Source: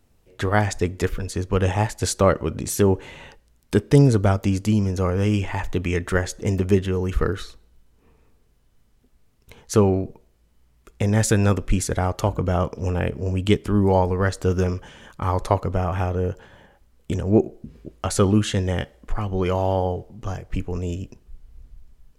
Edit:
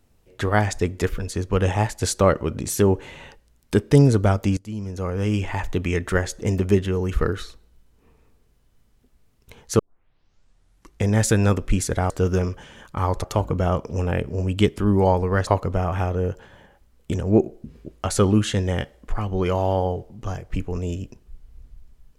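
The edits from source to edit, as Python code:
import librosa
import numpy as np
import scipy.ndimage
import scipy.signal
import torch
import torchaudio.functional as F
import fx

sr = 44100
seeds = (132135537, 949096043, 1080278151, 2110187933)

y = fx.edit(x, sr, fx.fade_in_from(start_s=4.57, length_s=0.93, floor_db=-20.0),
    fx.tape_start(start_s=9.79, length_s=1.29),
    fx.move(start_s=14.35, length_s=1.12, to_s=12.1), tone=tone)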